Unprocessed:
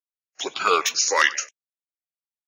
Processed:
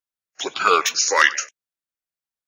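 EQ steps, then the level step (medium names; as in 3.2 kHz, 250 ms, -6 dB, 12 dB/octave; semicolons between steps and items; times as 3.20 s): bass shelf 170 Hz +4 dB; peaking EQ 1.5 kHz +4 dB 0.56 oct; +1.5 dB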